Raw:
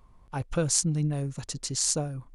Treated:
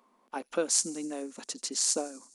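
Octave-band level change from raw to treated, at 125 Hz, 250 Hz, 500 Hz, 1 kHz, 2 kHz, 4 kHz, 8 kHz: −29.0, −5.0, 0.0, −0.5, −1.0, −1.0, −1.0 decibels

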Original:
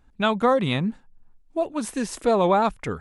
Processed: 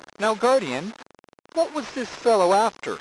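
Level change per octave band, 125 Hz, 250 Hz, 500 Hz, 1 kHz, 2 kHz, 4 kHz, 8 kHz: −11.0, −5.0, +2.0, +1.5, +0.5, 0.0, +1.0 decibels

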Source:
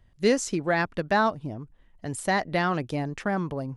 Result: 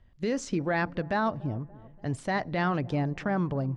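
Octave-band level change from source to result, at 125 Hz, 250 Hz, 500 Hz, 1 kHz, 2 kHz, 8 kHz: +2.0, −1.0, −4.5, −4.0, −4.5, −10.0 decibels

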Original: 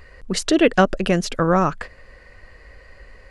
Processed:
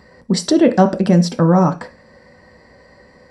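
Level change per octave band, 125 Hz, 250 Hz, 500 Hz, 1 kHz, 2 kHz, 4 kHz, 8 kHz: +9.0, +6.5, +3.0, +2.0, −5.5, +0.5, +1.0 decibels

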